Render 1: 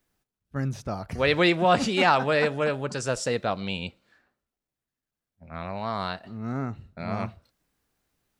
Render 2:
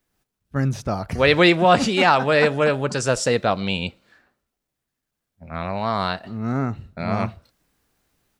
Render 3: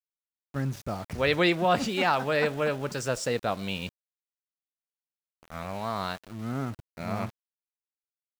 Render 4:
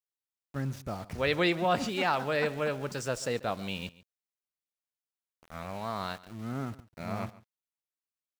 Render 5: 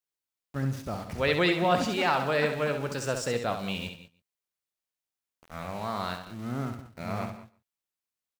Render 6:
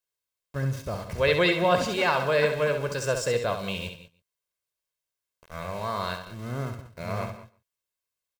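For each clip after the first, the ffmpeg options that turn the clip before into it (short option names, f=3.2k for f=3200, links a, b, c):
-af "dynaudnorm=f=110:g=3:m=7dB"
-af "aeval=exprs='val(0)*gte(abs(val(0)),0.0237)':c=same,volume=-8.5dB"
-af "aecho=1:1:140:0.106,volume=-3.5dB"
-af "aecho=1:1:67|166|189:0.422|0.112|0.141,volume=2dB"
-af "aecho=1:1:1.9:0.53,volume=1.5dB"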